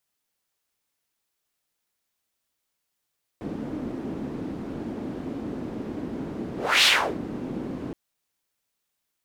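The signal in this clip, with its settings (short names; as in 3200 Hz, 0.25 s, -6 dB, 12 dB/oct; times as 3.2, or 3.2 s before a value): whoosh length 4.52 s, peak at 3.43, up 0.30 s, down 0.36 s, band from 270 Hz, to 3400 Hz, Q 2.4, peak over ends 15.5 dB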